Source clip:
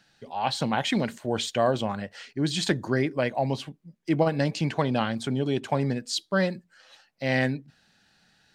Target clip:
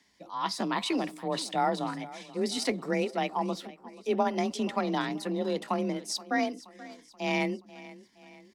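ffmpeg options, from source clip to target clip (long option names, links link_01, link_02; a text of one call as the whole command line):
ffmpeg -i in.wav -af "afreqshift=31,aecho=1:1:477|954|1431|1908:0.119|0.0606|0.0309|0.0158,asetrate=52444,aresample=44100,atempo=0.840896,volume=-4dB" out.wav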